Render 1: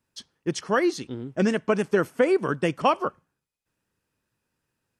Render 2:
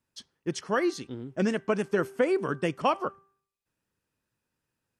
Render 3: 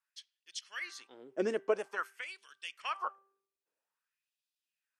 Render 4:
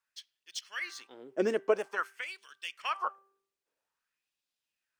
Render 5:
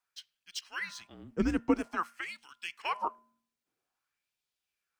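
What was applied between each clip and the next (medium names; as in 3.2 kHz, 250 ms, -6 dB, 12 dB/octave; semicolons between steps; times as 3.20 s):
de-hum 392 Hz, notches 5; trim -4 dB
LFO high-pass sine 0.5 Hz 360–3600 Hz; trim -8 dB
median filter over 3 samples; trim +3.5 dB
frequency shift -160 Hz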